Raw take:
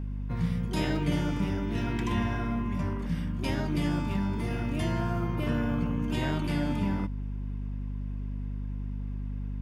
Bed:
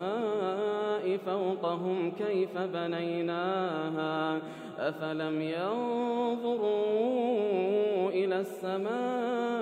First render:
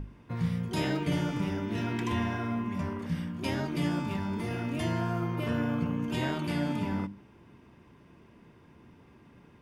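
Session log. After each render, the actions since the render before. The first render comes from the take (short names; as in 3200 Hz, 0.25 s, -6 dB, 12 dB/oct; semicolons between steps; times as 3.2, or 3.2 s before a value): notches 50/100/150/200/250/300 Hz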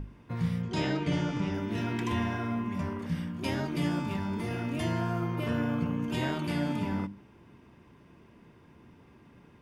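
0.62–1.54 LPF 7300 Hz 24 dB/oct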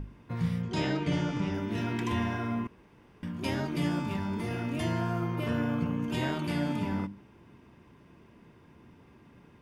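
2.67–3.23 room tone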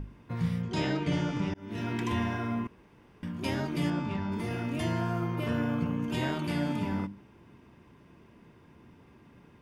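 1.54–2.03 fade in equal-power; 3.9–4.32 air absorption 100 m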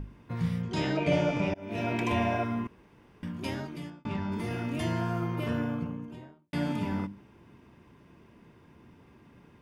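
0.97–2.44 small resonant body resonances 620/2400 Hz, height 15 dB, ringing for 20 ms; 3.29–4.05 fade out; 5.37–6.53 studio fade out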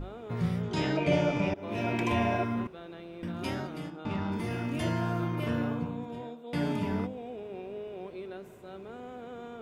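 add bed -12.5 dB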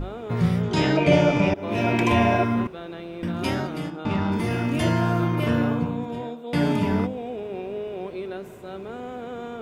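gain +8.5 dB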